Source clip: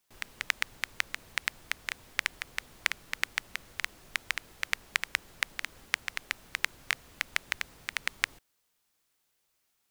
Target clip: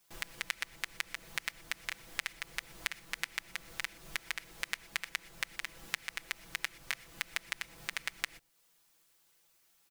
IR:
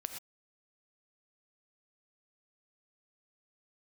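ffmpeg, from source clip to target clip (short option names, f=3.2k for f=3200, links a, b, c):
-filter_complex "[0:a]aecho=1:1:6:0.82,acompressor=threshold=-41dB:ratio=2.5,asplit=2[a][b];[1:a]atrim=start_sample=2205,highshelf=f=4.6k:g=8[c];[b][c]afir=irnorm=-1:irlink=0,volume=-12dB[d];[a][d]amix=inputs=2:normalize=0,volume=1.5dB"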